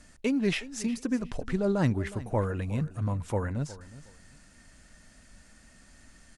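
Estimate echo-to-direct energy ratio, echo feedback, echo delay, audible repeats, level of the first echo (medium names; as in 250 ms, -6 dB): -17.0 dB, 23%, 364 ms, 2, -17.0 dB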